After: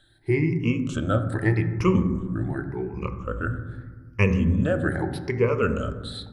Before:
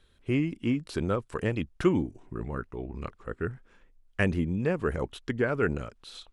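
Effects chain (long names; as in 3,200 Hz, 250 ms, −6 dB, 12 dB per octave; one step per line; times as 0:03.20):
rippled gain that drifts along the octave scale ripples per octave 0.82, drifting +0.83 Hz, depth 19 dB
on a send: low-shelf EQ 280 Hz +6 dB + convolution reverb RT60 1.5 s, pre-delay 4 ms, DRR 6.5 dB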